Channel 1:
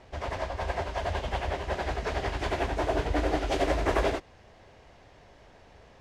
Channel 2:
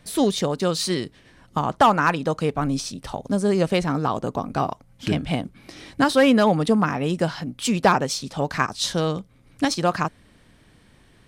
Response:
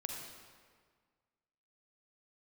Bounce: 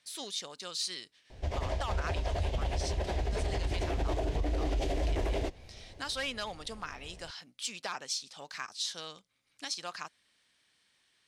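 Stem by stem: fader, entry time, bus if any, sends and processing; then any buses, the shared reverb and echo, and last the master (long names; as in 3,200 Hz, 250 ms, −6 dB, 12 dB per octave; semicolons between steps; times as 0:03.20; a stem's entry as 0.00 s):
0.0 dB, 1.30 s, no send, parametric band 1,300 Hz −11 dB 1.1 octaves
−6.0 dB, 0.00 s, no send, resonant band-pass 5,000 Hz, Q 0.81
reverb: not used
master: low-shelf EQ 85 Hz +10 dB; brickwall limiter −23.5 dBFS, peak gain reduction 11 dB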